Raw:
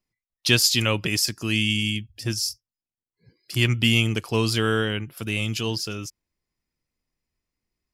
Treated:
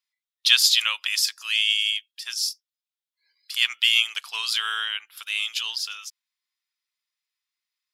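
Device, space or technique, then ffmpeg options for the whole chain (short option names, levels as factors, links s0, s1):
headphones lying on a table: -af "highpass=f=1100:w=0.5412,highpass=f=1100:w=1.3066,equalizer=f=3600:t=o:w=0.52:g=9.5,volume=0.891"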